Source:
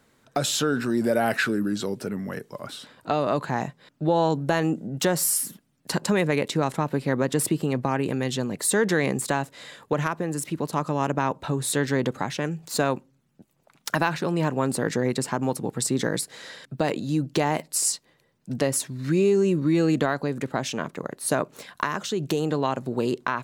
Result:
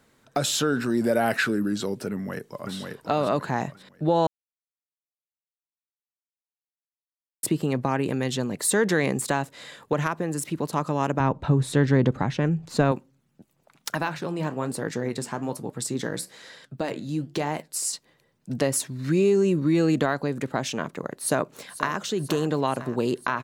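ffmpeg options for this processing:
ffmpeg -i in.wav -filter_complex "[0:a]asplit=2[link_01][link_02];[link_02]afade=type=in:start_time=2.12:duration=0.01,afade=type=out:start_time=2.74:duration=0.01,aecho=0:1:540|1080|1620|2160:0.668344|0.200503|0.060151|0.0180453[link_03];[link_01][link_03]amix=inputs=2:normalize=0,asettb=1/sr,asplit=3[link_04][link_05][link_06];[link_04]atrim=end=11.204[link_07];[link_05]atrim=start=11.2:end=12.92,asetpts=PTS-STARTPTS,afade=type=in:duration=0.004:curve=qsin,afade=type=out:start_time=1.716:duration=0.004:curve=qsin,aemphasis=mode=reproduction:type=bsi[link_08];[link_06]atrim=start=12.916[link_09];[link_07][link_08]acrossfade=duration=0.004:curve1=hsin:curve2=qsin[link_10];[link_10][link_09]acrossfade=duration=0.004:curve1=qsin:curve2=hsin,asettb=1/sr,asplit=3[link_11][link_12][link_13];[link_11]atrim=end=13.924[link_14];[link_12]atrim=start=13.92:end=17.93,asetpts=PTS-STARTPTS,afade=type=in:duration=0.004:curve=qsin,afade=type=out:start_time=4.006:duration=0.004:curve=qsin,flanger=delay=5.5:depth=9.5:regen=-74:speed=1.1:shape=triangular[link_15];[link_13]atrim=start=17.926[link_16];[link_14][link_15]acrossfade=duration=0.004:curve1=hsin:curve2=qsin[link_17];[link_17][link_16]acrossfade=duration=0.004:curve1=qsin:curve2=hsin,asplit=2[link_18][link_19];[link_19]afade=type=in:start_time=21.13:duration=0.01,afade=type=out:start_time=21.98:duration=0.01,aecho=0:1:490|980|1470|1960|2450|2940|3430|3920|4410:0.211349|0.147944|0.103561|0.0724927|0.0507449|0.0355214|0.024865|0.0174055|0.0121838[link_20];[link_18][link_20]amix=inputs=2:normalize=0,asplit=3[link_21][link_22][link_23];[link_21]atrim=end=4.27,asetpts=PTS-STARTPTS,afade=type=out:start_time=4.266:duration=0.004:curve=hsin[link_24];[link_22]atrim=start=4.27:end=7.43,asetpts=PTS-STARTPTS,volume=0[link_25];[link_23]atrim=start=7.43,asetpts=PTS-STARTPTS,afade=type=in:duration=0.004:curve=hsin[link_26];[link_24][link_25][link_26]concat=n=3:v=0:a=1" out.wav

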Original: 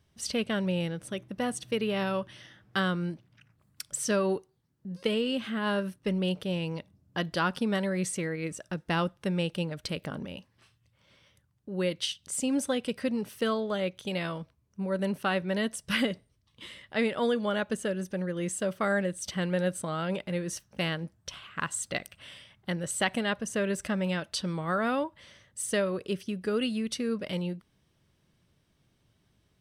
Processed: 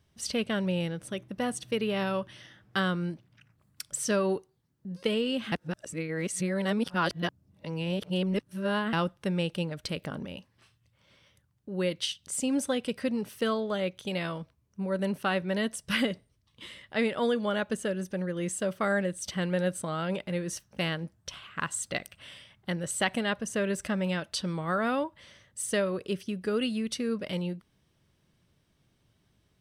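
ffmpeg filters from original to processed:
ffmpeg -i in.wav -filter_complex "[0:a]asplit=3[link_01][link_02][link_03];[link_01]atrim=end=5.522[link_04];[link_02]atrim=start=5.518:end=8.932,asetpts=PTS-STARTPTS,areverse[link_05];[link_03]atrim=start=8.928[link_06];[link_04][link_05]acrossfade=duration=0.004:curve1=hsin:curve2=hsin[link_07];[link_07][link_06]acrossfade=duration=0.004:curve1=hsin:curve2=hsin" out.wav

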